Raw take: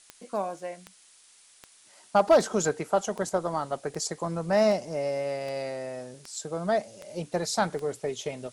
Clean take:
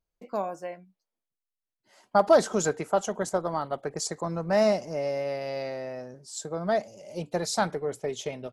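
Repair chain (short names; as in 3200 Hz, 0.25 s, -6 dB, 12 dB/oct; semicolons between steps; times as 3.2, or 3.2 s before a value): clip repair -12 dBFS; de-click; denoiser 30 dB, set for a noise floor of -57 dBFS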